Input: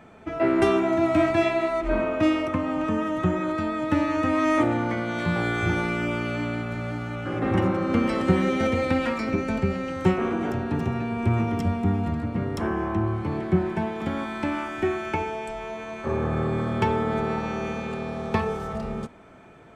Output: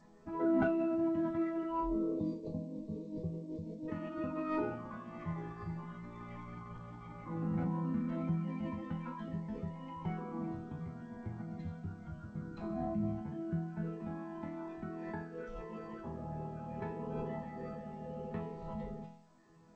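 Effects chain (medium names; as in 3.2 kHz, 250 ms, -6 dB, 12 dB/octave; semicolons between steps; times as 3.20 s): spectral selection erased 1.81–3.88 s, 1.2–4.6 kHz; reverb removal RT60 1 s; companded quantiser 8-bit; bass shelf 210 Hz +6 dB; band-stop 470 Hz, Q 12; compression 1.5:1, threshold -28 dBFS, peak gain reduction 6.5 dB; chord resonator E3 major, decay 0.69 s; de-hum 121.1 Hz, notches 2; formant shift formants -5 st; distance through air 370 m; trim +10.5 dB; G.722 64 kbps 16 kHz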